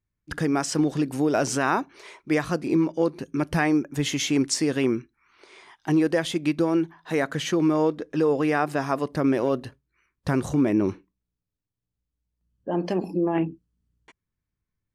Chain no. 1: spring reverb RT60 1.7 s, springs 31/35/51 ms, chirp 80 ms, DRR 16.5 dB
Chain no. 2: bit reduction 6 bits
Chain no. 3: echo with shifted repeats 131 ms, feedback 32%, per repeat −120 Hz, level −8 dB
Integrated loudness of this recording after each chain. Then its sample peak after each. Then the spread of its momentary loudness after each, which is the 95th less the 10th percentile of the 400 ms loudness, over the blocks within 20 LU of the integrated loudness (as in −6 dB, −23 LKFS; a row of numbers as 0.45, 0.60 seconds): −24.5, −24.5, −24.0 LKFS; −10.5, −10.5, −10.0 dBFS; 8, 7, 8 LU